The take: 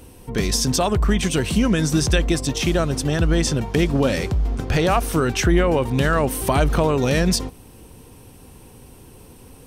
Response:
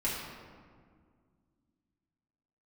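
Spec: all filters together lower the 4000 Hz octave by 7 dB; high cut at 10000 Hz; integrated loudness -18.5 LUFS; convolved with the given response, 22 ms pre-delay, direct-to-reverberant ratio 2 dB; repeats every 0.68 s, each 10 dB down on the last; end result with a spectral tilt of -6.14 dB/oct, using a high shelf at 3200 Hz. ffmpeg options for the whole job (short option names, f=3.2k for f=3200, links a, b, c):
-filter_complex "[0:a]lowpass=10k,highshelf=f=3.2k:g=-5,equalizer=f=4k:t=o:g=-5.5,aecho=1:1:680|1360|2040|2720:0.316|0.101|0.0324|0.0104,asplit=2[a][b];[1:a]atrim=start_sample=2205,adelay=22[c];[b][c]afir=irnorm=-1:irlink=0,volume=-8.5dB[d];[a][d]amix=inputs=2:normalize=0,volume=-1dB"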